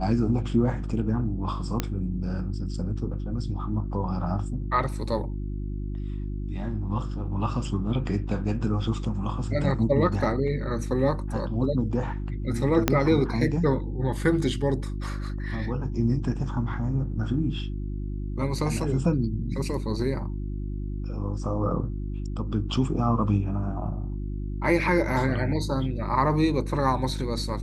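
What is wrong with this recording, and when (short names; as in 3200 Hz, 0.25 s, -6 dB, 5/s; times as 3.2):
hum 50 Hz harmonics 7 -31 dBFS
1.8 pop -10 dBFS
12.88 pop -5 dBFS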